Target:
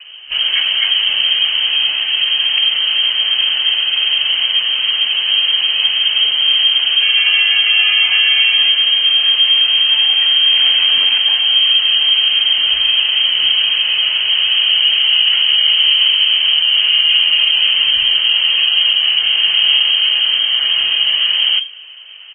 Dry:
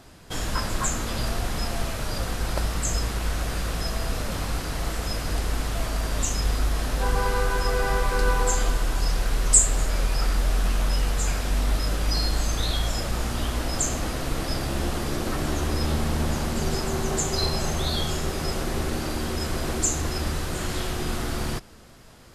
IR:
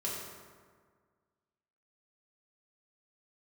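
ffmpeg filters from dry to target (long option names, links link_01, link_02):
-filter_complex "[0:a]equalizer=frequency=350:width_type=o:width=2.3:gain=13.5,asettb=1/sr,asplit=3[link_01][link_02][link_03];[link_01]atrim=end=13.664[link_04];[link_02]atrim=start=13.66:end=14.45,asetpts=PTS-STARTPTS,afade=type=in:duration=0.004:curve=qsin,afade=type=out:start_time=0.786:duration=0.004:curve=qsin,bandreject=frequency=60:width_type=h:width=6,bandreject=frequency=120:width_type=h:width=6,bandreject=frequency=180:width_type=h:width=6,bandreject=frequency=240:width_type=h:width=6,bandreject=frequency=300:width_type=h:width=6,bandreject=frequency=360:width_type=h:width=6,bandreject=frequency=420:width_type=h:width=6,bandreject=frequency=480:width_type=h:width=6,bandreject=frequency=540:width_type=h:width=6,bandreject=frequency=600:width_type=h:width=6[link_05];[link_03]atrim=start=14.446[link_06];[link_04][link_05]acrossfade=duration=0.004:curve1=hsin:curve2=qsin[link_07];[link_07][link_06]acrossfade=duration=0.004:curve1=qsin:curve2=hsin,acrossover=split=300|1000[link_08][link_09][link_10];[link_08]acontrast=51[link_11];[link_11][link_09][link_10]amix=inputs=3:normalize=0,flanger=delay=1.4:depth=8.2:regen=89:speed=0.43:shape=sinusoidal,acrusher=bits=9:mode=log:mix=0:aa=0.000001,asettb=1/sr,asplit=3[link_12][link_13][link_14];[link_12]atrim=end=10.514[link_15];[link_13]atrim=start=10.51:end=11.18,asetpts=PTS-STARTPTS,afade=type=in:duration=0.004:curve=qsin,afade=type=out:start_time=0.666:duration=0.004:curve=qsin,aeval=exprs='0.316*(cos(1*acos(clip(val(0)/0.316,-1,1)))-cos(1*PI/2))+0.0447*(cos(7*acos(clip(val(0)/0.316,-1,1)))-cos(7*PI/2))':channel_layout=same[link_16];[link_14]atrim=start=11.176[link_17];[link_15][link_16]acrossfade=duration=0.004:curve1=hsin:curve2=qsin[link_18];[link_18][link_17]acrossfade=duration=0.004:curve1=qsin:curve2=hsin,afreqshift=-28,asoftclip=type=hard:threshold=-11dB,asplit=3[link_19][link_20][link_21];[link_19]afade=type=out:start_time=19.19:duration=0.02[link_22];[link_20]asplit=2[link_23][link_24];[link_24]adelay=27,volume=-3.5dB[link_25];[link_23][link_25]amix=inputs=2:normalize=0,afade=type=in:start_time=19.19:duration=0.02,afade=type=out:start_time=19.9:duration=0.02[link_26];[link_21]afade=type=in:start_time=19.9:duration=0.02[link_27];[link_22][link_26][link_27]amix=inputs=3:normalize=0,lowpass=frequency=2700:width_type=q:width=0.5098,lowpass=frequency=2700:width_type=q:width=0.6013,lowpass=frequency=2700:width_type=q:width=0.9,lowpass=frequency=2700:width_type=q:width=2.563,afreqshift=-3200,alimiter=level_in=10dB:limit=-1dB:release=50:level=0:latency=1,volume=-2dB" -ar 12000 -c:a libmp3lame -b:a 16k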